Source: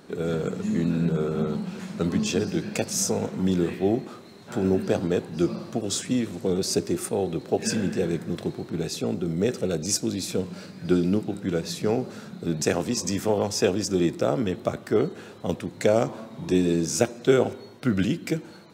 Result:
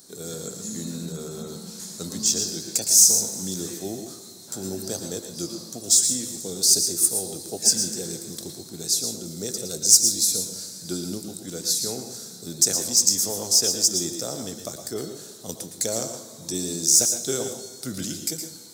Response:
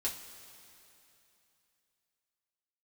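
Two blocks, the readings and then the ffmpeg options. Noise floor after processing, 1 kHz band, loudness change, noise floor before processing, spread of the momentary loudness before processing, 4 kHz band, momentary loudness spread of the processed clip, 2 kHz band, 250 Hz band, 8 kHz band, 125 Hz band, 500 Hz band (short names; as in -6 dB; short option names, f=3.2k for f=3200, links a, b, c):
-43 dBFS, -9.0 dB, +5.0 dB, -45 dBFS, 8 LU, +9.5 dB, 19 LU, n/a, -9.0 dB, +14.0 dB, -9.5 dB, -9.0 dB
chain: -filter_complex "[0:a]aexciter=amount=8:drive=9.3:freq=4.1k,asplit=2[a][b];[1:a]atrim=start_sample=2205,adelay=111[c];[b][c]afir=irnorm=-1:irlink=0,volume=-8.5dB[d];[a][d]amix=inputs=2:normalize=0,volume=-10dB"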